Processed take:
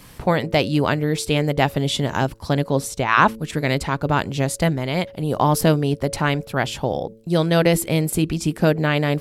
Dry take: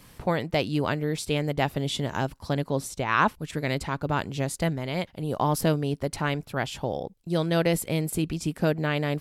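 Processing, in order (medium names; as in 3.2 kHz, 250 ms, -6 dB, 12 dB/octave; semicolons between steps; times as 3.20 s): de-hum 111.4 Hz, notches 5; trim +7 dB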